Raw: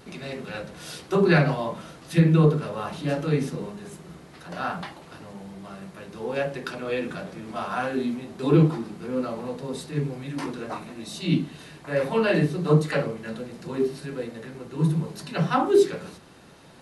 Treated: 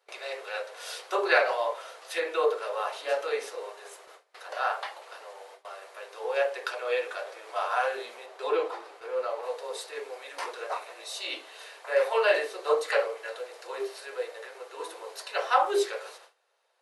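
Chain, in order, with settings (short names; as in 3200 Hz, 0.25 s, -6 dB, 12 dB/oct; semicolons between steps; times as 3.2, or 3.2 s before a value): steep high-pass 460 Hz 48 dB/oct; gate with hold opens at -40 dBFS; high shelf 4800 Hz -3 dB, from 8.26 s -10 dB, from 9.43 s -2 dB; gain +1.5 dB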